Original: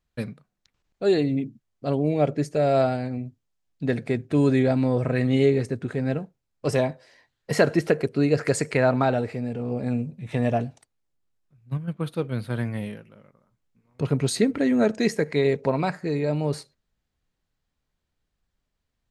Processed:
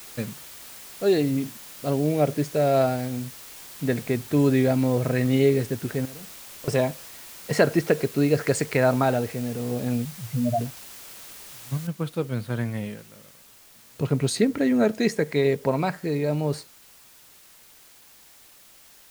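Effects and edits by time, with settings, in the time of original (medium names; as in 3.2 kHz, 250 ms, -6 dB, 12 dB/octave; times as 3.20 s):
6.05–6.68 s: compression 16:1, threshold -37 dBFS
10.05–10.61 s: spectral contrast enhancement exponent 3.9
11.87 s: noise floor step -43 dB -52 dB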